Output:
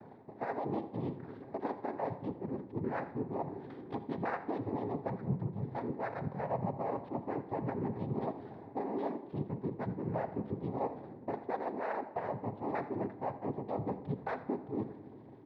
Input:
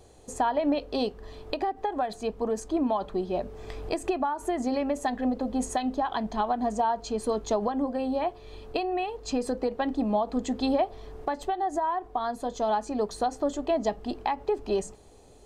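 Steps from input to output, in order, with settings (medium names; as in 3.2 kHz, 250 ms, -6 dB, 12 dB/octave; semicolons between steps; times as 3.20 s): sawtooth pitch modulation -8 st, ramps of 1416 ms; steep low-pass 1.9 kHz 72 dB/octave; tilt EQ -1.5 dB/octave; reverse; compression 6:1, threshold -36 dBFS, peak gain reduction 16.5 dB; reverse; noise-vocoded speech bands 6; delay 83 ms -17.5 dB; reverberation RT60 1.4 s, pre-delay 7 ms, DRR 10.5 dB; trim +1.5 dB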